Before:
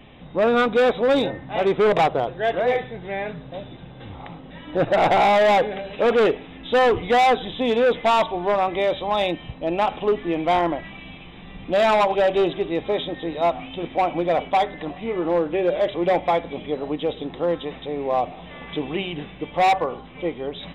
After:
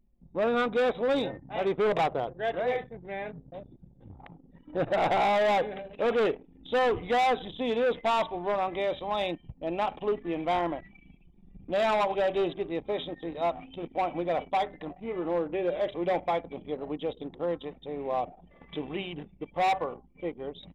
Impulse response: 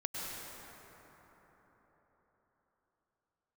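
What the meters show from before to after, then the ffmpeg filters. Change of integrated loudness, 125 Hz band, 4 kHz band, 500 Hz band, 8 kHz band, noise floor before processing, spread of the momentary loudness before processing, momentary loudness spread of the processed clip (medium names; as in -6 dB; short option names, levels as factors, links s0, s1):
-8.0 dB, -8.5 dB, -8.5 dB, -8.0 dB, no reading, -41 dBFS, 14 LU, 12 LU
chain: -af "anlmdn=10,volume=0.398"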